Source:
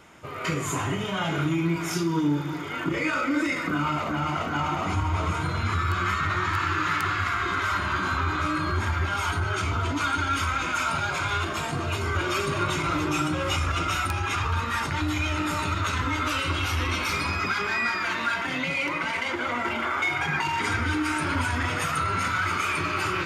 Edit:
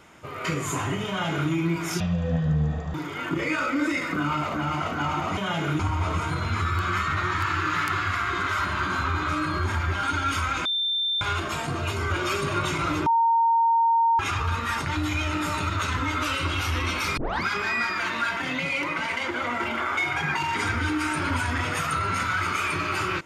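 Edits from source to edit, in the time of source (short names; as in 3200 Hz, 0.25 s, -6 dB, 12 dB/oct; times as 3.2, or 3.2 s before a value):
1.08–1.5 copy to 4.92
2–2.49 speed 52%
9.16–10.08 cut
10.7–11.26 bleep 3570 Hz -22.5 dBFS
13.11–14.24 bleep 920 Hz -17 dBFS
17.22 tape start 0.27 s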